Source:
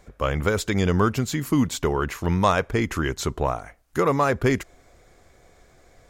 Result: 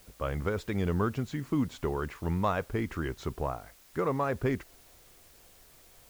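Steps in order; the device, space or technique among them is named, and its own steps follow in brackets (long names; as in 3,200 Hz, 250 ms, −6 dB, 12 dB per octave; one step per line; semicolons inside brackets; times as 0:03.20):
cassette deck with a dirty head (head-to-tape spacing loss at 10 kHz 20 dB; tape wow and flutter; white noise bed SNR 26 dB)
level −7.5 dB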